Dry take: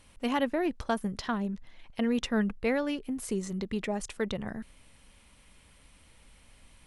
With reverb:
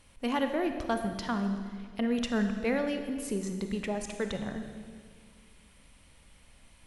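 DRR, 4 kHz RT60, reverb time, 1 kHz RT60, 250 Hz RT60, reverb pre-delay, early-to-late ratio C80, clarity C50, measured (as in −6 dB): 6.0 dB, 1.7 s, 1.9 s, 1.7 s, 2.4 s, 28 ms, 8.5 dB, 7.0 dB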